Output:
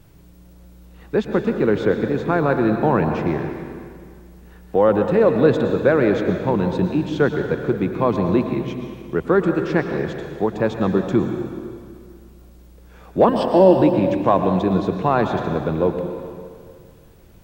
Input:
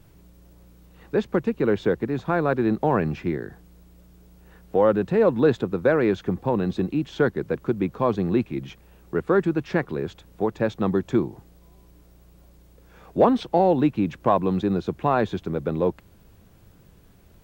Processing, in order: 13.28–13.82 s: rippled EQ curve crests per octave 1.3, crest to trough 15 dB; plate-style reverb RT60 2.1 s, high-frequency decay 0.9×, pre-delay 95 ms, DRR 5 dB; trim +3 dB

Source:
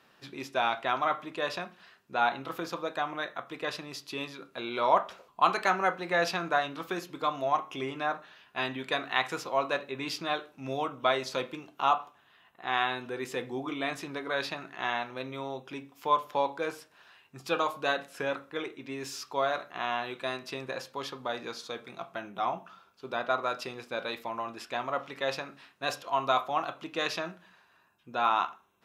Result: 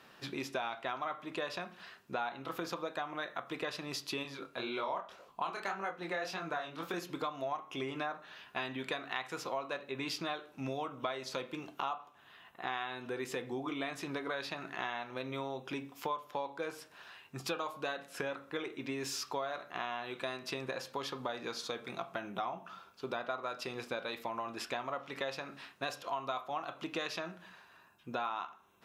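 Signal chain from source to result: 4.23–6.94 s: chorus 1.8 Hz, delay 19 ms, depth 7.8 ms; compression 6:1, threshold -39 dBFS, peak gain reduction 18 dB; trim +4 dB

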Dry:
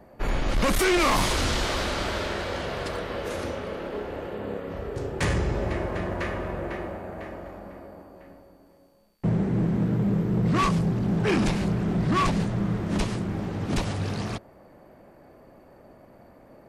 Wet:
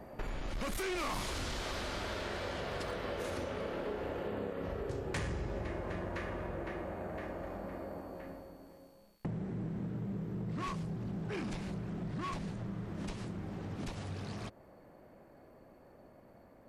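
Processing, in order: Doppler pass-by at 4.26 s, 7 m/s, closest 7.5 m; compression 5:1, threshold -52 dBFS, peak gain reduction 24 dB; trim +13.5 dB

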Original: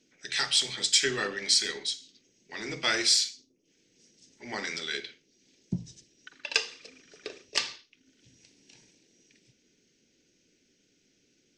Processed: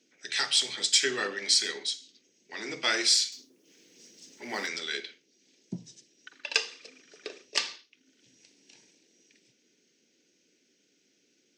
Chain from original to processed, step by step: 3.32–4.67 s: companding laws mixed up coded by mu; high-pass 230 Hz 12 dB/octave

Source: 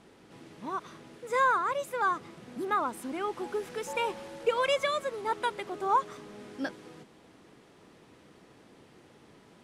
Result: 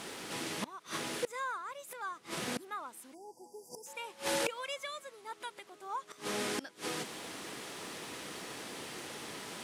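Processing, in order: inverted gate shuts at -34 dBFS, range -27 dB; spectral selection erased 3.14–3.86 s, 1–4.6 kHz; tilt EQ +3 dB/octave; trim +13.5 dB

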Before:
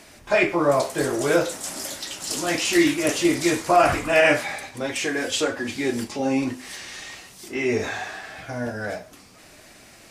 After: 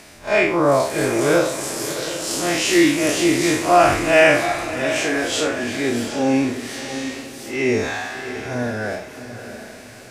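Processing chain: spectral blur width 92 ms; echo that smears into a reverb 698 ms, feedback 41%, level -10.5 dB; trim +5.5 dB

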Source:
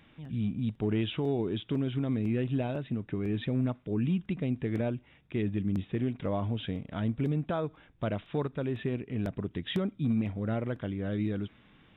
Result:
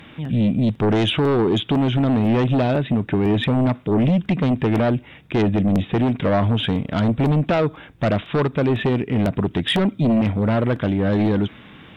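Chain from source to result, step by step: high-pass 80 Hz 6 dB/octave; in parallel at -4 dB: sine folder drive 9 dB, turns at -19.5 dBFS; on the sum: trim +5.5 dB

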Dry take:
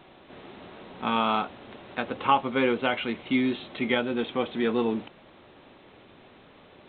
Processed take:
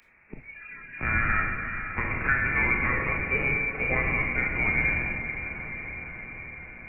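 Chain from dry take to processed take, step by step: rattle on loud lows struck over -44 dBFS, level -20 dBFS; frequency inversion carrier 2.6 kHz; bass shelf 120 Hz +8 dB; reverberation RT60 1.3 s, pre-delay 18 ms, DRR 0.5 dB; spectral noise reduction 18 dB; echo that smears into a reverb 488 ms, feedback 59%, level -13 dB; three bands compressed up and down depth 40%; trim -3 dB

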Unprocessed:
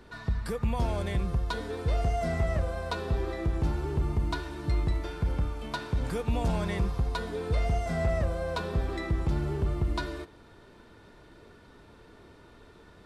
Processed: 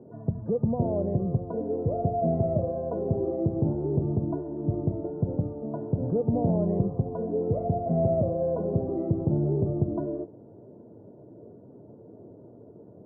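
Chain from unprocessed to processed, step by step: loudest bins only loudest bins 64; elliptic band-pass 110–640 Hz, stop band 60 dB; trim +8 dB

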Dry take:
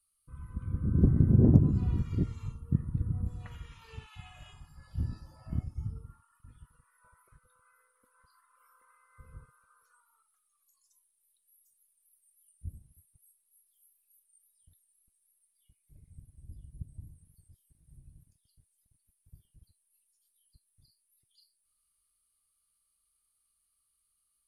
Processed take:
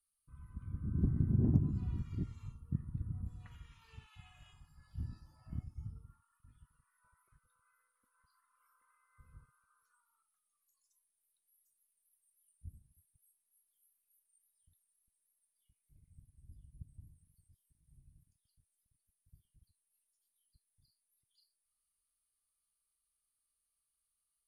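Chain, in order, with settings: peaking EQ 510 Hz -9.5 dB 0.72 oct; trim -8.5 dB

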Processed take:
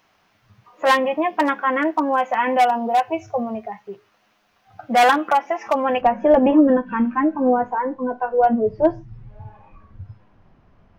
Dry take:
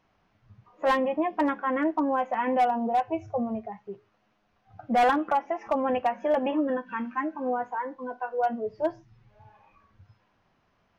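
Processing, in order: tilt EQ +2.5 dB/octave, from 6.00 s -3 dB/octave; trim +8 dB

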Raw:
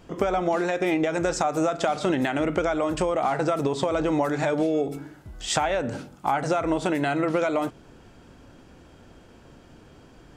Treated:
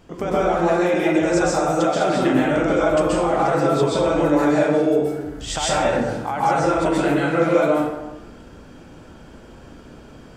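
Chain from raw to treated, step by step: in parallel at -0.5 dB: peak limiter -20.5 dBFS, peak gain reduction 10.5 dB; on the sum: plate-style reverb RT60 1 s, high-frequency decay 0.55×, pre-delay 115 ms, DRR -6.5 dB; trim -6 dB

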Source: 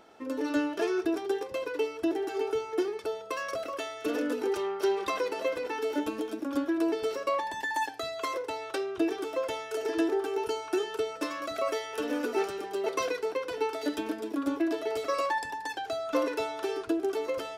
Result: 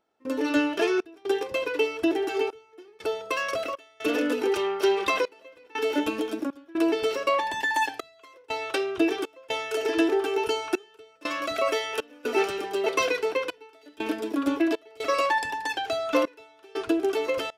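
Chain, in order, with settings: dynamic bell 2.7 kHz, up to +7 dB, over -53 dBFS, Q 1.7; trance gate ".xxx.xxxxx." 60 bpm -24 dB; trim +4.5 dB

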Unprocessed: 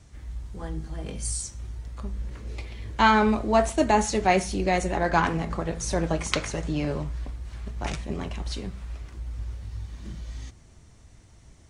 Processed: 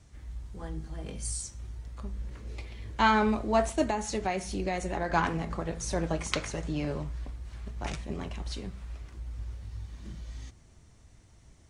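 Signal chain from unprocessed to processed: 3.85–5.10 s: compression, threshold -22 dBFS, peak gain reduction 8 dB; trim -4.5 dB

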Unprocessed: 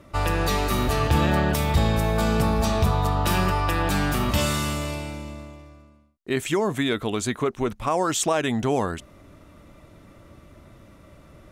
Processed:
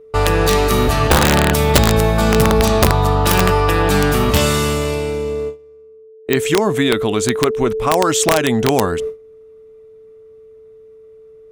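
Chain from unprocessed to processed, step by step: whistle 440 Hz -26 dBFS; gate with hold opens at -22 dBFS; integer overflow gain 11.5 dB; trim +7.5 dB

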